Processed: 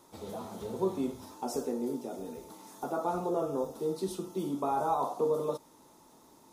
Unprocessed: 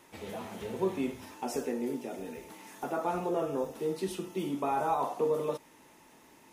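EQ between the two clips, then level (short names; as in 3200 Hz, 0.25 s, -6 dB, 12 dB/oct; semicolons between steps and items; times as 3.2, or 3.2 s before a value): band shelf 2200 Hz -12 dB 1.1 oct; 0.0 dB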